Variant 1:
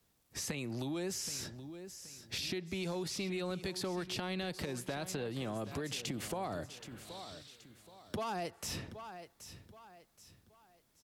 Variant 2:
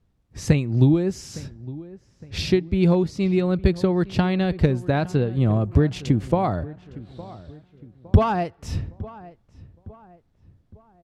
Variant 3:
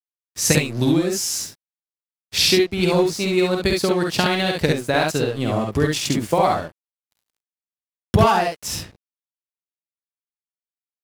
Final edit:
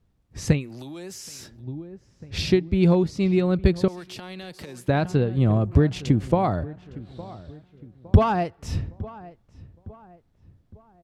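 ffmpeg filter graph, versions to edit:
-filter_complex "[0:a]asplit=2[s0][s1];[1:a]asplit=3[s2][s3][s4];[s2]atrim=end=0.71[s5];[s0]atrim=start=0.47:end=1.69[s6];[s3]atrim=start=1.45:end=3.882[s7];[s1]atrim=start=3.878:end=4.882[s8];[s4]atrim=start=4.878[s9];[s5][s6]acrossfade=d=0.24:c1=tri:c2=tri[s10];[s10][s7]acrossfade=d=0.24:c1=tri:c2=tri[s11];[s11][s8]acrossfade=d=0.004:c1=hsin:c2=hsin[s12];[s12][s9]acrossfade=d=0.004:c1=hsin:c2=hsin"

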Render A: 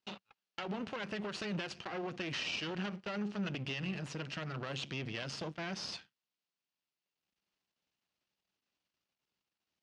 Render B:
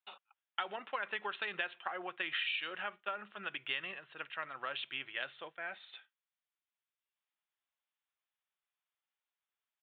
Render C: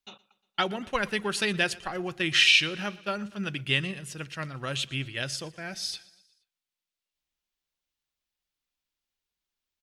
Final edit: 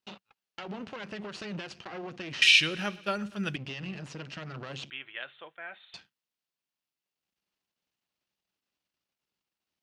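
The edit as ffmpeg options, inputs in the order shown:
-filter_complex "[0:a]asplit=3[s0][s1][s2];[s0]atrim=end=2.422[s3];[2:a]atrim=start=2.418:end=3.562[s4];[s1]atrim=start=3.558:end=4.902[s5];[1:a]atrim=start=4.898:end=5.942[s6];[s2]atrim=start=5.938[s7];[s3][s4]acrossfade=d=0.004:c1=hsin:c2=hsin[s8];[s8][s5]acrossfade=d=0.004:c1=hsin:c2=hsin[s9];[s9][s6]acrossfade=d=0.004:c1=hsin:c2=hsin[s10];[s10][s7]acrossfade=d=0.004:c1=hsin:c2=hsin"

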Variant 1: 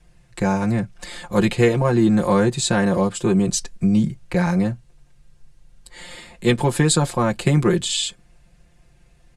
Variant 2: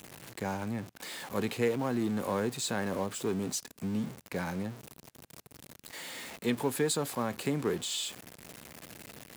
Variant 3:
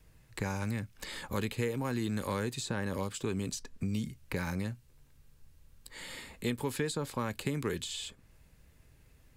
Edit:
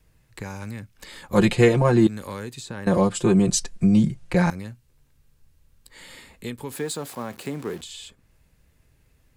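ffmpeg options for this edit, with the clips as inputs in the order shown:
-filter_complex "[0:a]asplit=2[s0][s1];[2:a]asplit=4[s2][s3][s4][s5];[s2]atrim=end=1.332[s6];[s0]atrim=start=1.328:end=2.072[s7];[s3]atrim=start=2.068:end=2.872[s8];[s1]atrim=start=2.868:end=4.502[s9];[s4]atrim=start=4.498:end=6.722[s10];[1:a]atrim=start=6.718:end=7.812[s11];[s5]atrim=start=7.808[s12];[s6][s7]acrossfade=d=0.004:c1=hsin:c2=hsin[s13];[s13][s8]acrossfade=d=0.004:c1=hsin:c2=hsin[s14];[s14][s9]acrossfade=d=0.004:c1=hsin:c2=hsin[s15];[s15][s10]acrossfade=d=0.004:c1=hsin:c2=hsin[s16];[s16][s11]acrossfade=d=0.004:c1=hsin:c2=hsin[s17];[s17][s12]acrossfade=d=0.004:c1=hsin:c2=hsin"

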